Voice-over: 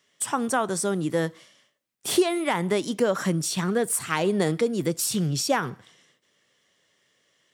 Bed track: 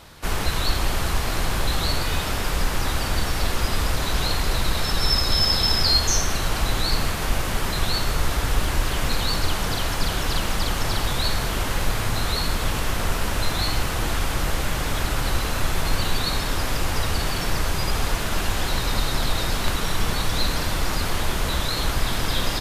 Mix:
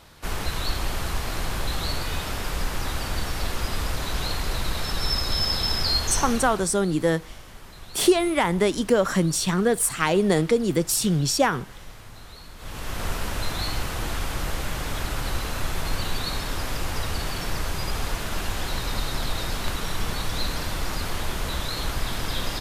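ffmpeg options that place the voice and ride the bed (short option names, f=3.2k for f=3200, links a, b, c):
-filter_complex "[0:a]adelay=5900,volume=3dB[a];[1:a]volume=11dB,afade=t=out:st=6.26:d=0.42:silence=0.16788,afade=t=in:st=12.56:d=0.5:silence=0.16788[b];[a][b]amix=inputs=2:normalize=0"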